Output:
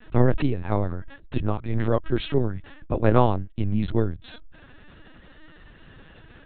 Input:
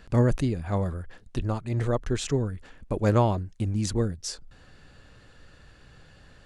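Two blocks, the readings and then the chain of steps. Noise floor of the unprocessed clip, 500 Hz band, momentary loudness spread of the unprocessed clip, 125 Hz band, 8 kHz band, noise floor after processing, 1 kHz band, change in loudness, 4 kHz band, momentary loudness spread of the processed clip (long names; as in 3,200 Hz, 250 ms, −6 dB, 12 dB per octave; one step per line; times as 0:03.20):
−54 dBFS, +3.0 dB, 13 LU, +1.0 dB, below −40 dB, −50 dBFS, +4.0 dB, +2.5 dB, −1.0 dB, 11 LU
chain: pitch vibrato 0.41 Hz 72 cents
linear-prediction vocoder at 8 kHz pitch kept
level +4 dB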